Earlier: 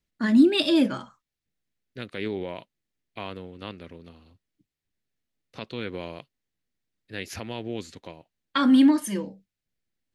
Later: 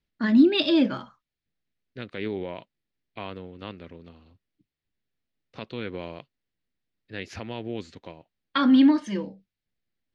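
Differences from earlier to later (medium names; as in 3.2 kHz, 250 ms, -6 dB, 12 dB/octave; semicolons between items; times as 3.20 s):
first voice: add low-pass 5.1 kHz 24 dB/octave; second voice: add distance through air 110 m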